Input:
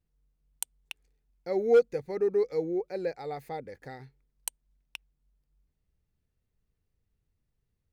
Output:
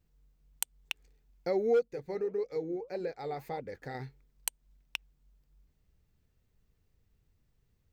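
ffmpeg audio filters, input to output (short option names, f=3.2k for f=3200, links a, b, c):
-filter_complex "[0:a]equalizer=f=10k:w=6.4:g=-13.5,acompressor=threshold=-37dB:ratio=2.5,asettb=1/sr,asplit=3[a][b][c];[a]atrim=end=1.884[d];[b]atrim=start=1.88:end=3.95,asetpts=PTS-STARTPTS,afade=t=in:d=0.004:c=qsin,afade=t=out:st=2.066:d=0.004:c=qsin,flanger=delay=0.6:depth=9.4:regen=-76:speed=1.7:shape=triangular[e];[c]atrim=start=3.946[f];[d][e]acrossfade=d=0.004:c1=hsin:c2=qsin[g];[g][f]acrossfade=d=0.004:c1=qsin:c2=hsin,volume=6.5dB"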